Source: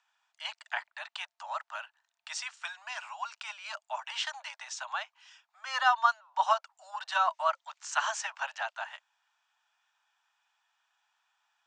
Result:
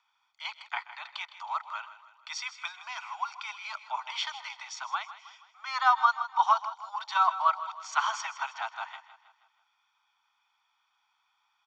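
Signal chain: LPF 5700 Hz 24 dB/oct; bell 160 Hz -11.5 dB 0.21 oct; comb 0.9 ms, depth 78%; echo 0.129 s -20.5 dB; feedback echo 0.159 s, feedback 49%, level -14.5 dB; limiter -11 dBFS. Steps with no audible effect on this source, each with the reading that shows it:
bell 160 Hz: input band starts at 510 Hz

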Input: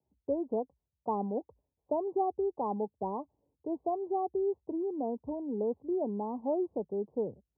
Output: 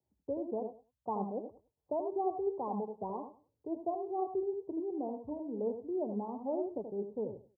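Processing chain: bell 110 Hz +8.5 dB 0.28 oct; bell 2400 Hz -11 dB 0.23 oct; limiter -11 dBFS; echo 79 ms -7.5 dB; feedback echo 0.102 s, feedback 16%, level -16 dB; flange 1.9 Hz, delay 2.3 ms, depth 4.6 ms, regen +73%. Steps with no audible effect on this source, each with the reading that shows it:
bell 2400 Hz: input band ends at 1100 Hz; limiter -11 dBFS: input peak -20.0 dBFS

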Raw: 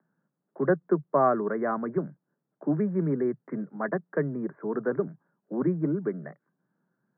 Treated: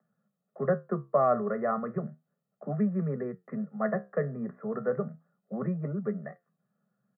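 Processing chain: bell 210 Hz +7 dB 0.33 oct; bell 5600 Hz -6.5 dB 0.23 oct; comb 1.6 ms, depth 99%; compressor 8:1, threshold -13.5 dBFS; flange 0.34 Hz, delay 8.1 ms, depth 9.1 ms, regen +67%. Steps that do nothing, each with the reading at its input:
bell 5600 Hz: input band ends at 1800 Hz

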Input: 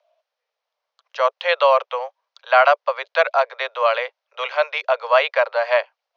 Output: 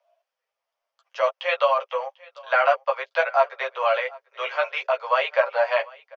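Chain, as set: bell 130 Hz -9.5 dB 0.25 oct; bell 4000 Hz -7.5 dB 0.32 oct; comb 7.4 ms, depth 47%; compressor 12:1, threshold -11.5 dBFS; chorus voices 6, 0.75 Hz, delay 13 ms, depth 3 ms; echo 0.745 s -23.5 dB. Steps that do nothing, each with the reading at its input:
bell 130 Hz: input band starts at 380 Hz

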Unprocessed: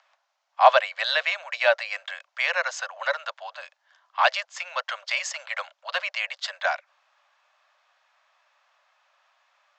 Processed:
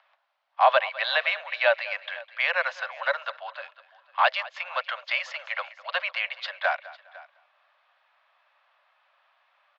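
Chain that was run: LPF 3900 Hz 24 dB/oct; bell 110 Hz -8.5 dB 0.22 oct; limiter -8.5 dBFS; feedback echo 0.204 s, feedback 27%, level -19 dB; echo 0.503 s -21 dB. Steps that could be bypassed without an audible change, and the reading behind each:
bell 110 Hz: input band starts at 450 Hz

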